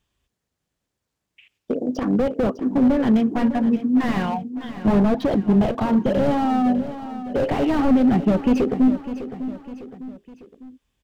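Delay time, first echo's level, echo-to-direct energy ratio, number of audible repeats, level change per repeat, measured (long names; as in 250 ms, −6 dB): 603 ms, −12.5 dB, −11.5 dB, 3, −6.5 dB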